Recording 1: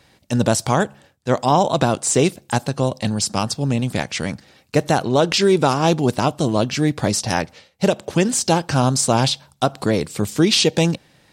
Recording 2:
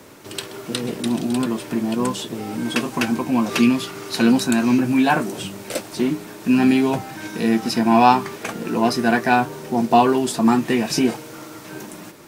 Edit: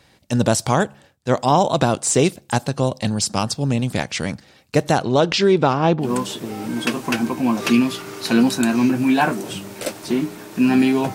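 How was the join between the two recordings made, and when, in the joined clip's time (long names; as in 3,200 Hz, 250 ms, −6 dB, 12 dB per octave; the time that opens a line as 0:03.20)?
recording 1
0:04.92–0:06.11: low-pass filter 9,800 Hz → 1,800 Hz
0:06.05: continue with recording 2 from 0:01.94, crossfade 0.12 s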